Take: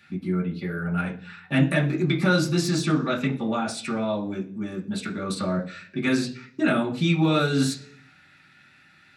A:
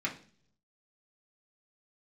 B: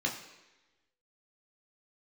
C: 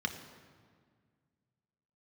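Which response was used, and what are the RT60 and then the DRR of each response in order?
A; 0.50, 1.1, 1.8 s; -3.5, -0.5, 4.5 dB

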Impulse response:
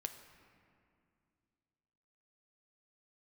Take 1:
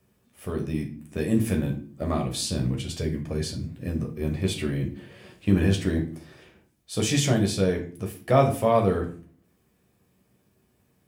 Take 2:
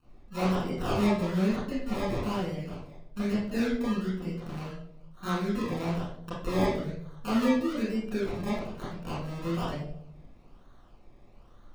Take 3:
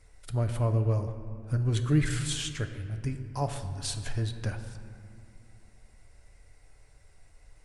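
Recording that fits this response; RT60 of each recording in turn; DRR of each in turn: 3; 0.45, 0.70, 2.4 s; 1.0, -10.5, 6.5 dB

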